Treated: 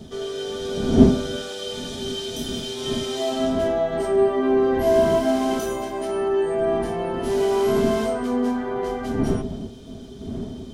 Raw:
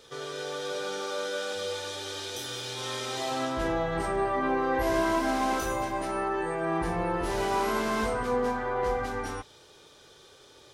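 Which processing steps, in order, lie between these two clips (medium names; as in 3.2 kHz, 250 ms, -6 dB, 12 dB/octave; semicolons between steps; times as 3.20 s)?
wind noise 190 Hz -30 dBFS; treble shelf 2.9 kHz +8 dB; small resonant body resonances 250/390/650/3100 Hz, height 17 dB, ringing for 85 ms; trim -4.5 dB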